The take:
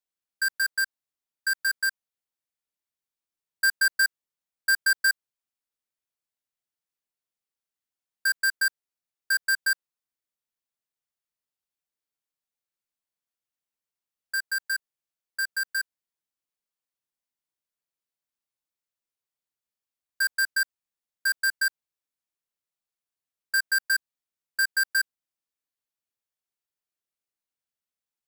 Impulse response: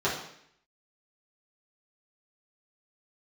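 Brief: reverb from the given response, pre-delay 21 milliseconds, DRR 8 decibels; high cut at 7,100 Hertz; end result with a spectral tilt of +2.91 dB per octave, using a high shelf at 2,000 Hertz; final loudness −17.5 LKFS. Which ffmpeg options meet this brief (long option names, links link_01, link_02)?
-filter_complex "[0:a]lowpass=7100,highshelf=frequency=2000:gain=-8,asplit=2[link_01][link_02];[1:a]atrim=start_sample=2205,adelay=21[link_03];[link_02][link_03]afir=irnorm=-1:irlink=0,volume=-20dB[link_04];[link_01][link_04]amix=inputs=2:normalize=0,volume=10.5dB"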